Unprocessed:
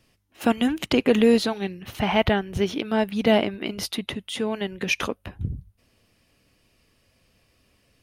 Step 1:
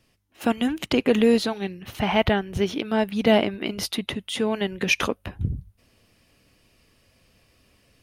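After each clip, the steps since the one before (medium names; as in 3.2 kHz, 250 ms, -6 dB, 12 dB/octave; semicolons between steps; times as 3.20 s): gain riding within 3 dB 2 s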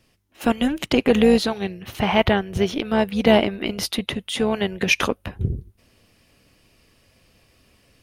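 AM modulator 290 Hz, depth 25%; trim +4.5 dB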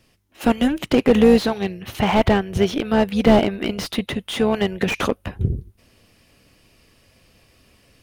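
slew-rate limiter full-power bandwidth 150 Hz; trim +2.5 dB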